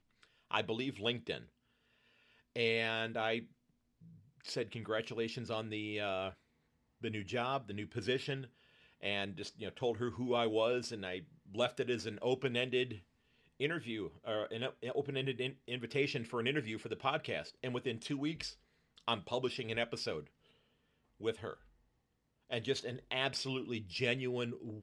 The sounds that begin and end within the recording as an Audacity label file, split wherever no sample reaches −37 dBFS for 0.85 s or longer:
2.560000	3.390000	sound
4.460000	20.190000	sound
21.240000	21.530000	sound